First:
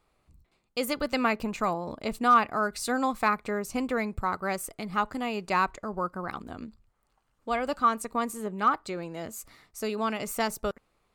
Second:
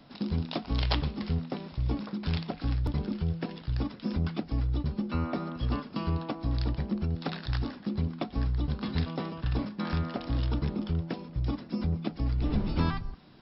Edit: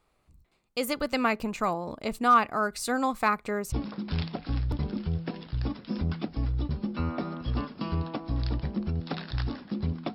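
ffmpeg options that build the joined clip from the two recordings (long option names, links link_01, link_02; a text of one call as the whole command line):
ffmpeg -i cue0.wav -i cue1.wav -filter_complex "[0:a]apad=whole_dur=10.14,atrim=end=10.14,atrim=end=3.722[link_01];[1:a]atrim=start=1.868:end=8.29[link_02];[link_01][link_02]acrossfade=duration=0.004:curve1=hsin:curve2=hsin" out.wav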